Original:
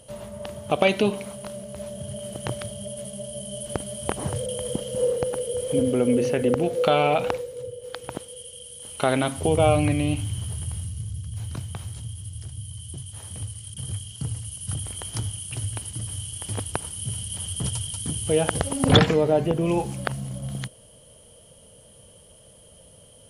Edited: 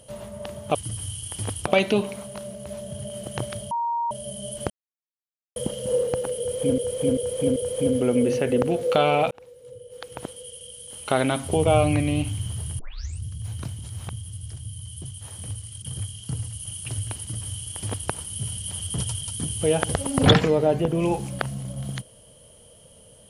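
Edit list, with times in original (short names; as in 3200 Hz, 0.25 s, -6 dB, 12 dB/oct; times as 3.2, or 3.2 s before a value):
2.8–3.2 bleep 938 Hz -22.5 dBFS
3.79–4.65 mute
5.48–5.87 loop, 4 plays
7.23–8.26 fade in
10.71 tape start 0.43 s
11.71–12.05 reverse
14.58–15.32 cut
15.85–16.76 copy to 0.75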